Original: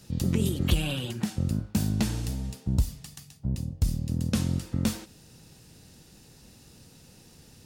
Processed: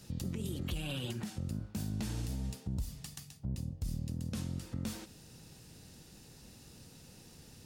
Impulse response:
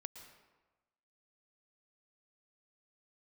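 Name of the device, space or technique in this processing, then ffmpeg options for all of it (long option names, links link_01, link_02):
stacked limiters: -af "alimiter=limit=-18dB:level=0:latency=1:release=209,alimiter=limit=-21.5dB:level=0:latency=1:release=40,alimiter=level_in=2.5dB:limit=-24dB:level=0:latency=1:release=195,volume=-2.5dB,volume=-2dB"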